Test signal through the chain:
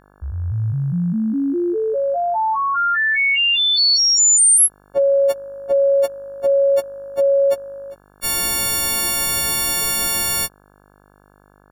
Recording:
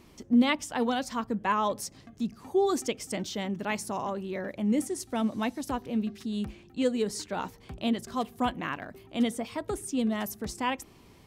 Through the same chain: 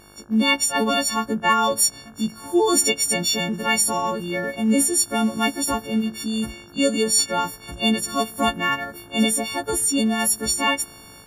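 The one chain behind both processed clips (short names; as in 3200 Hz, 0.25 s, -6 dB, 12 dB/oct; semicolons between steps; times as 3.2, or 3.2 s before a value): frequency quantiser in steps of 4 st; AGC gain up to 7 dB; buzz 50 Hz, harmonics 34, -53 dBFS -2 dB/oct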